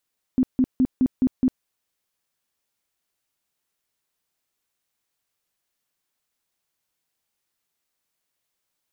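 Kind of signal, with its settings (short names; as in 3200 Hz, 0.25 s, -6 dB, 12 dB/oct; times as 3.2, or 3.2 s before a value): tone bursts 257 Hz, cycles 13, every 0.21 s, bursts 6, -14.5 dBFS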